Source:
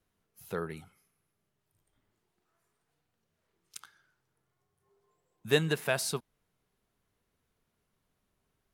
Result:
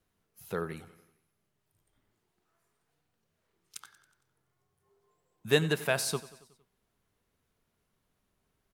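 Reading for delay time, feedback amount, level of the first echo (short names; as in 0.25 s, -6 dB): 92 ms, 58%, -18.0 dB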